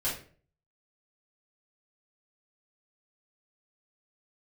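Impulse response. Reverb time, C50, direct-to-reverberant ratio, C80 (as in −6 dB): 0.45 s, 5.5 dB, −9.0 dB, 11.0 dB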